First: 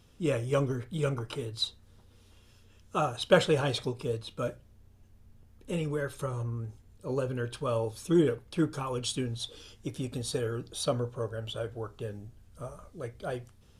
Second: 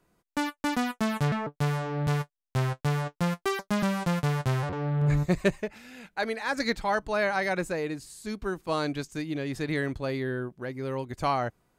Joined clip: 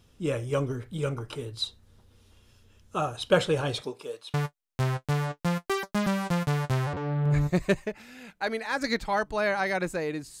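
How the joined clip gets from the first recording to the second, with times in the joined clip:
first
3.8–4.34 HPF 210 Hz -> 1000 Hz
4.34 switch to second from 2.1 s

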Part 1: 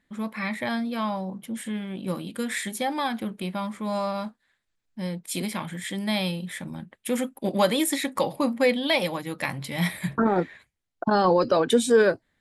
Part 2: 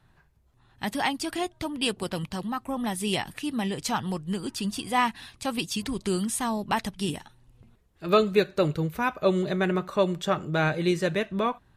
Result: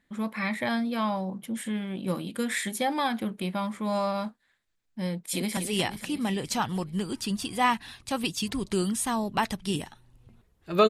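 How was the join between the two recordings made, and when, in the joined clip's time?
part 1
5.09–5.57 echo throw 0.24 s, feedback 65%, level -8 dB
5.57 switch to part 2 from 2.91 s

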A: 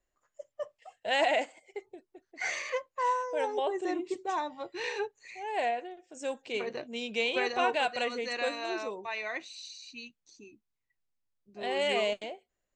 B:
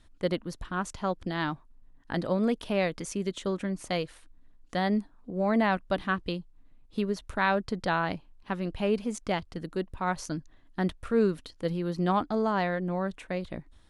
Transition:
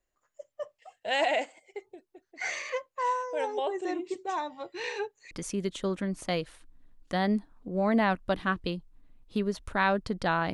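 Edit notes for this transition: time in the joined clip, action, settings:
A
5.31 switch to B from 2.93 s

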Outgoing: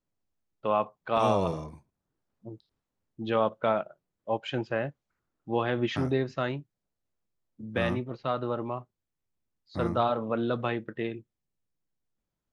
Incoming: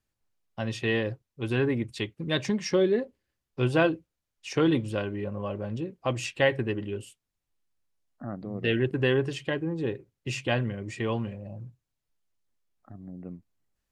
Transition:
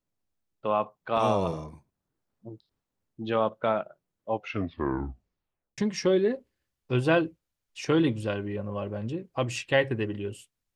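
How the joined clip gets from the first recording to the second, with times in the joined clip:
outgoing
4.31 tape stop 1.47 s
5.78 switch to incoming from 2.46 s

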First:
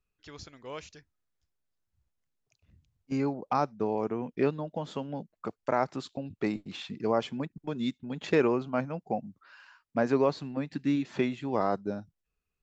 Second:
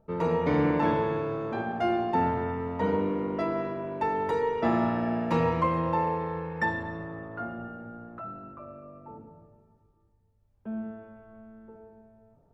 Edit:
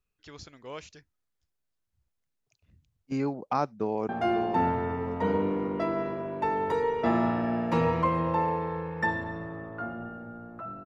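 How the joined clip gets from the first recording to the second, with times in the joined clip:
first
3.81–4.09 echo throw 0.54 s, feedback 65%, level -9 dB
4.09 switch to second from 1.68 s

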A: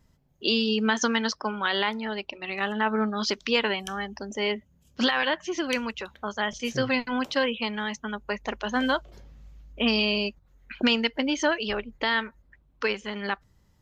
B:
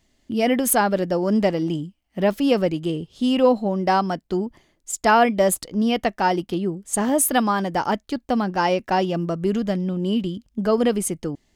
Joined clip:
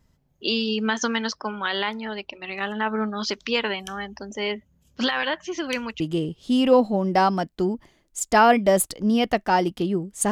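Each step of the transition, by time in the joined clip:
A
6 switch to B from 2.72 s

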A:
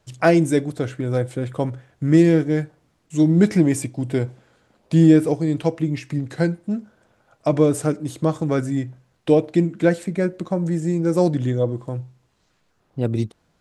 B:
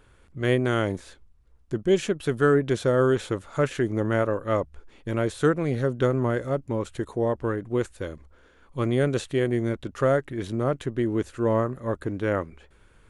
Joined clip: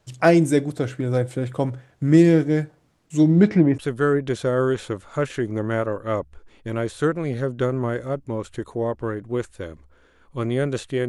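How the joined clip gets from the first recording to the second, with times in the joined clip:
A
3.19–3.78 LPF 8200 Hz -> 1400 Hz
3.78 switch to B from 2.19 s

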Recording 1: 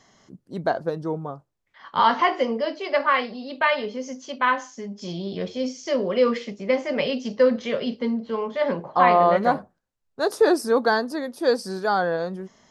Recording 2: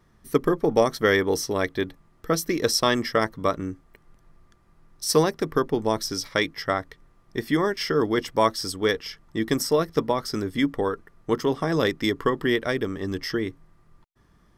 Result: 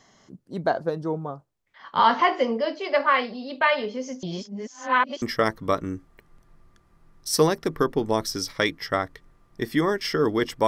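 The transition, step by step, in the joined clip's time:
recording 1
4.23–5.22 reverse
5.22 switch to recording 2 from 2.98 s

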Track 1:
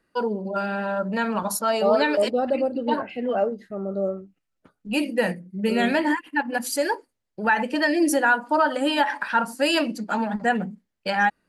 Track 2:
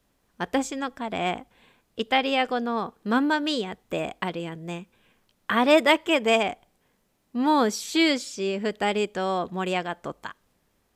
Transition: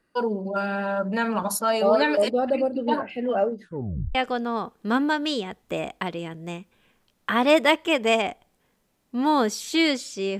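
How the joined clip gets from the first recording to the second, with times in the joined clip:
track 1
3.62 tape stop 0.53 s
4.15 switch to track 2 from 2.36 s

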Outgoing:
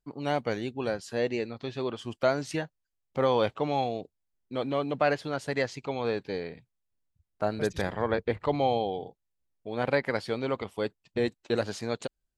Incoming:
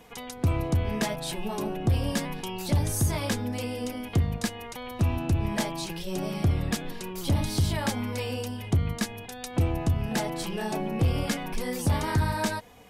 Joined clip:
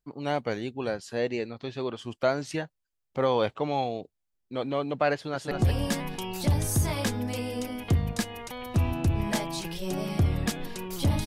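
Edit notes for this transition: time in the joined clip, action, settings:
outgoing
5.14–5.51 echo throw 0.2 s, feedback 15%, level -4.5 dB
5.51 switch to incoming from 1.76 s

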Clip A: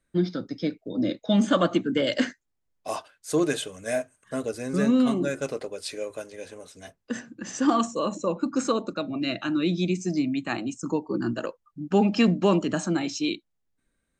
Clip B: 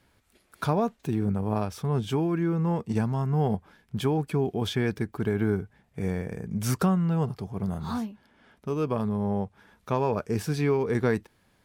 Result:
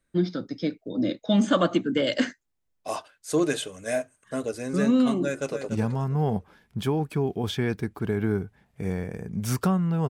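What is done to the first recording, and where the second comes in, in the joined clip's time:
clip A
5.22–5.69 echo throw 0.29 s, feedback 25%, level -9 dB
5.69 switch to clip B from 2.87 s

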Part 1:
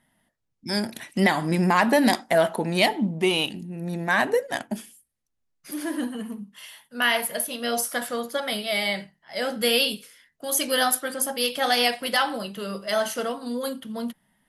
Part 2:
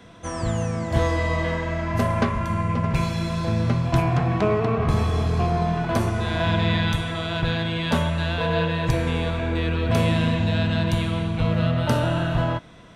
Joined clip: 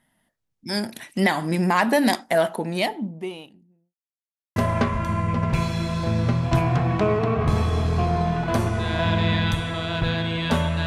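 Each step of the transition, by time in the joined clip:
part 1
2.31–3.95 studio fade out
3.95–4.56 mute
4.56 switch to part 2 from 1.97 s

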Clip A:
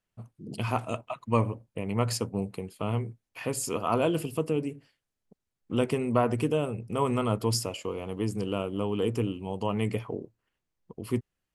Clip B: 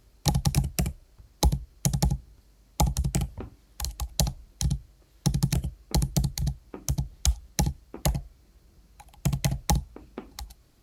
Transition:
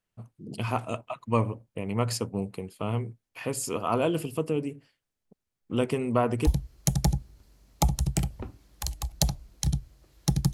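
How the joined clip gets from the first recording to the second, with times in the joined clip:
clip A
6.05 add clip B from 1.03 s 0.42 s -13.5 dB
6.47 switch to clip B from 1.45 s

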